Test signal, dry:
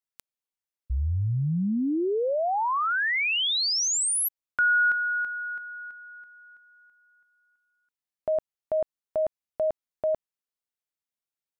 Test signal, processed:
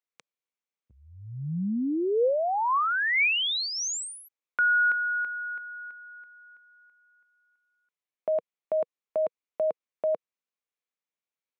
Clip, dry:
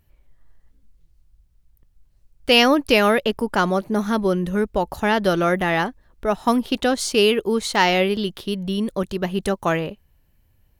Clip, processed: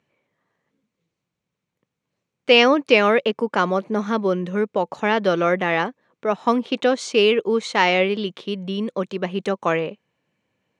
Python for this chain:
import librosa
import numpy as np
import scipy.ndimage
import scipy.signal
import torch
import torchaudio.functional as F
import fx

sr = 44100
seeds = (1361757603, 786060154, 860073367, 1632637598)

y = fx.cabinet(x, sr, low_hz=160.0, low_slope=24, high_hz=6900.0, hz=(490.0, 1100.0, 2300.0, 4900.0), db=(6, 4, 6, -6))
y = y * 10.0 ** (-2.0 / 20.0)